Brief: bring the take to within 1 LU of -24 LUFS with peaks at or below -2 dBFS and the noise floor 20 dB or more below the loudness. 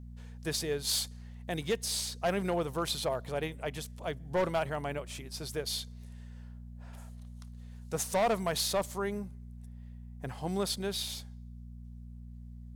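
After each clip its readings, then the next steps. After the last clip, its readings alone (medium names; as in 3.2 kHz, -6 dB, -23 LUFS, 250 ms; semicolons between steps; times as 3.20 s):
clipped samples 0.7%; clipping level -23.5 dBFS; hum 60 Hz; highest harmonic 240 Hz; hum level -44 dBFS; loudness -33.5 LUFS; peak level -23.5 dBFS; loudness target -24.0 LUFS
-> clip repair -23.5 dBFS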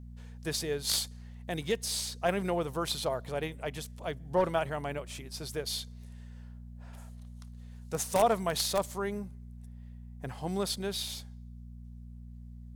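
clipped samples 0.0%; hum 60 Hz; highest harmonic 240 Hz; hum level -44 dBFS
-> de-hum 60 Hz, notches 4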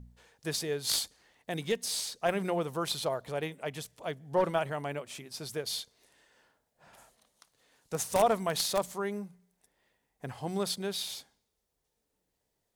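hum not found; loudness -33.0 LUFS; peak level -14.0 dBFS; loudness target -24.0 LUFS
-> trim +9 dB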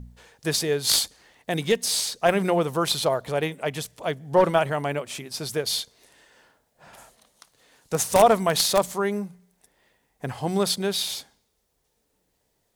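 loudness -24.0 LUFS; peak level -5.0 dBFS; noise floor -72 dBFS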